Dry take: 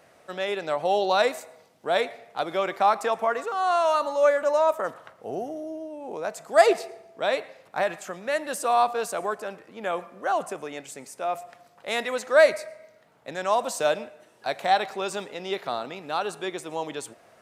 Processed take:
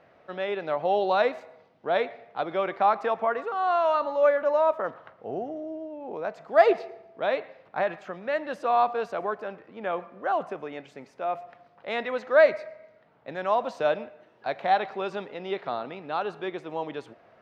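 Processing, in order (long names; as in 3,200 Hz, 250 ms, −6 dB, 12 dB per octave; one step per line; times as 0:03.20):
high-frequency loss of the air 290 metres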